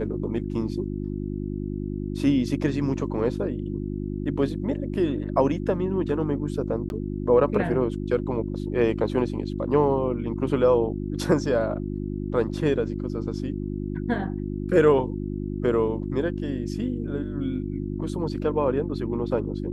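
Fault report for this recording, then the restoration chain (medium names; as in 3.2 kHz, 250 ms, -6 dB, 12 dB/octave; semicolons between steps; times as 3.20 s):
hum 50 Hz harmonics 7 -30 dBFS
6.89–6.90 s: dropout 11 ms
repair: de-hum 50 Hz, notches 7; interpolate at 6.89 s, 11 ms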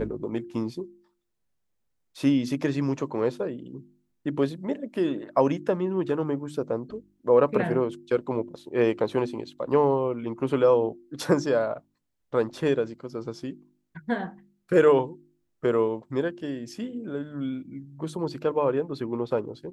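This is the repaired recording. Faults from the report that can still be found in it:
nothing left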